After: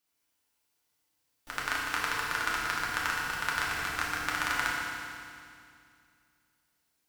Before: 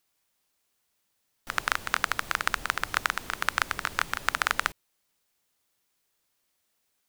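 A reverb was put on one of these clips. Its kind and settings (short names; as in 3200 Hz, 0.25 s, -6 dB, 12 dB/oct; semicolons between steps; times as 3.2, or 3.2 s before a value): FDN reverb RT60 2.3 s, low-frequency decay 1.3×, high-frequency decay 1×, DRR -5.5 dB; gain -8.5 dB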